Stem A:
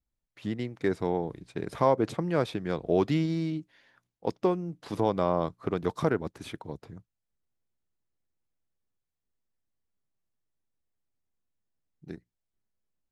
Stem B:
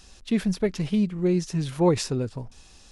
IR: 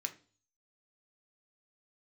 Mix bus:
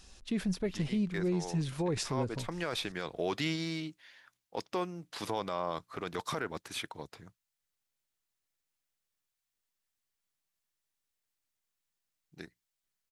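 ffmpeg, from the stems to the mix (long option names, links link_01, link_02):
-filter_complex "[0:a]tiltshelf=frequency=800:gain=-8.5,adelay=300,volume=-1dB[link_01];[1:a]alimiter=limit=-18.5dB:level=0:latency=1:release=56,volume=-5.5dB,asplit=2[link_02][link_03];[link_03]apad=whole_len=591405[link_04];[link_01][link_04]sidechaincompress=threshold=-39dB:ratio=8:attack=6.6:release=305[link_05];[link_05][link_02]amix=inputs=2:normalize=0,alimiter=limit=-22.5dB:level=0:latency=1:release=17"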